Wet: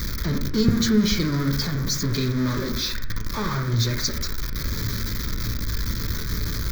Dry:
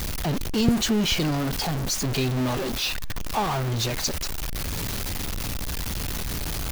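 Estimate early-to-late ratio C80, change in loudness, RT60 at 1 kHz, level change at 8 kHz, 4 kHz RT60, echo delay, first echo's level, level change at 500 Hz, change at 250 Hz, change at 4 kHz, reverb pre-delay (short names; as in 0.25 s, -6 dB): 13.5 dB, +1.5 dB, 0.60 s, -1.5 dB, 0.40 s, none, none, -0.5 dB, +2.5 dB, 0.0 dB, 9 ms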